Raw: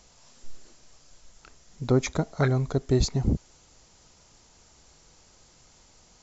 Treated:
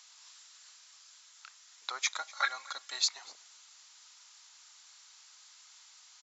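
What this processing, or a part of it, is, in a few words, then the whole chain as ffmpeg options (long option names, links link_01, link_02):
headphones lying on a table: -filter_complex "[0:a]asettb=1/sr,asplit=3[link_01][link_02][link_03];[link_01]atrim=end=2.174[link_04];[link_02]atrim=start=2.17:end=2.99,asetpts=PTS-STARTPTS,afade=type=in:duration=0.004:curve=qsin,afade=type=out:start_time=0.816:duration=0.004:curve=qsin,aecho=1:1:3.6:0.68,atrim=end_sample=36162[link_05];[link_03]atrim=start=2.986[link_06];[link_04][link_05]acrossfade=duration=0.004:curve1=hsin:curve2=qsin[link_07];[link_07][link_06]acrossfade=duration=0.004:curve1=qsin:curve2=hsin,highpass=frequency=1100:width=0.5412,highpass=frequency=1100:width=1.3066,equalizer=frequency=3800:width_type=o:width=0.5:gain=5,aecho=1:1:245:0.0708,volume=1dB"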